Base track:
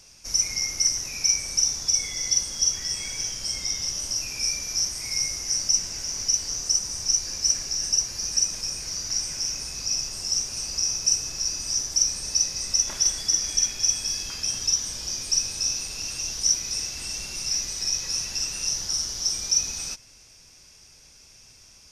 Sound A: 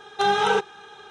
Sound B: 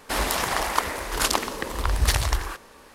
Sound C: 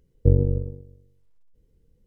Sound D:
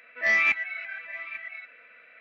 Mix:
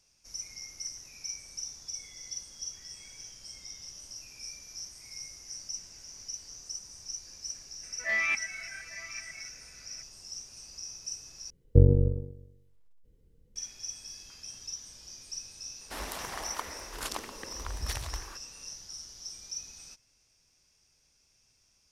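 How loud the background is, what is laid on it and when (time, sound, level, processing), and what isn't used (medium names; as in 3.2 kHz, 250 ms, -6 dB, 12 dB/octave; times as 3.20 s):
base track -17 dB
7.83 s: add D -6.5 dB
11.50 s: replace with C -1 dB
15.81 s: add B -14 dB
not used: A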